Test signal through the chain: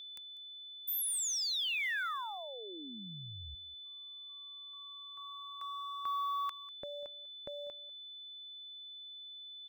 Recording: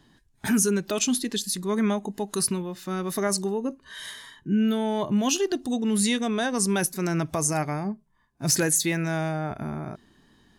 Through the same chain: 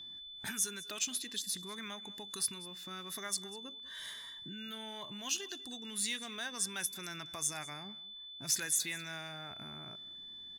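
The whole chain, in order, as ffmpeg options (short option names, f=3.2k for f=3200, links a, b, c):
-filter_complex "[0:a]acrossover=split=1200[a][b];[a]acompressor=threshold=-40dB:ratio=6[c];[b]acrusher=bits=6:mode=log:mix=0:aa=0.000001[d];[c][d]amix=inputs=2:normalize=0,aeval=exprs='val(0)+0.0141*sin(2*PI*3500*n/s)':c=same,aecho=1:1:195:0.106,volume=-8.5dB"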